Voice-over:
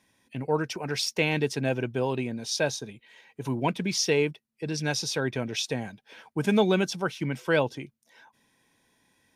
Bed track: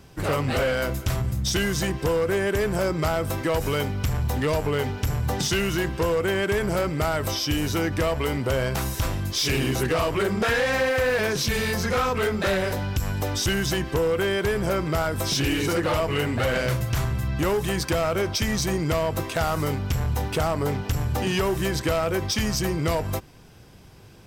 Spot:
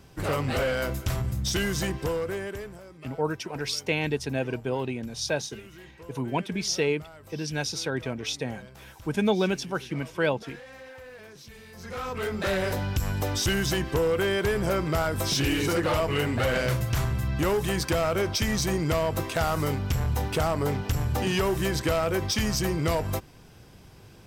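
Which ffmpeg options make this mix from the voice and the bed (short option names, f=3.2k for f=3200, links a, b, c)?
-filter_complex "[0:a]adelay=2700,volume=-1.5dB[a];[1:a]volume=18.5dB,afade=t=out:st=1.86:d=0.95:silence=0.1,afade=t=in:st=11.72:d=1.01:silence=0.0841395[b];[a][b]amix=inputs=2:normalize=0"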